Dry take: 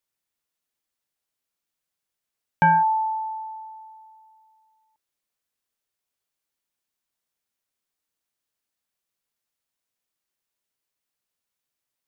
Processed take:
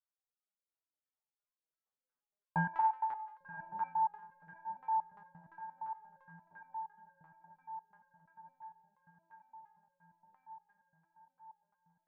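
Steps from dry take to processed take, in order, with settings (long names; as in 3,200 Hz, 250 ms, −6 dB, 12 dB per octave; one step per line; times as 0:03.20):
source passing by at 0:03.08, 9 m/s, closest 5.9 metres
feedback delay with all-pass diffusion 1,150 ms, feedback 57%, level −10 dB
in parallel at +3 dB: brickwall limiter −53 dBFS, peak gain reduction 39.5 dB
on the sum: auto-filter low-pass saw down 2.9 Hz 470–1,500 Hz
dynamic equaliser 2,600 Hz, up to +7 dB, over −39 dBFS, Q 1.1
on a send: feedback echo with a high-pass in the loop 88 ms, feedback 73%, high-pass 360 Hz, level −10 dB
on the sum: step-sequenced resonator 8.6 Hz 100–530 Hz
level −1 dB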